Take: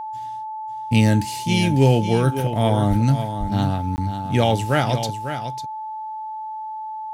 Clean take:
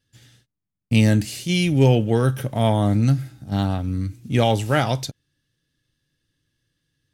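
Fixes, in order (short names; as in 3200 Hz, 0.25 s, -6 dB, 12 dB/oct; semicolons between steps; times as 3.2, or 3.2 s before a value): notch 870 Hz, Q 30; de-plosive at 2.89/3.39; interpolate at 3.96, 19 ms; inverse comb 0.548 s -9.5 dB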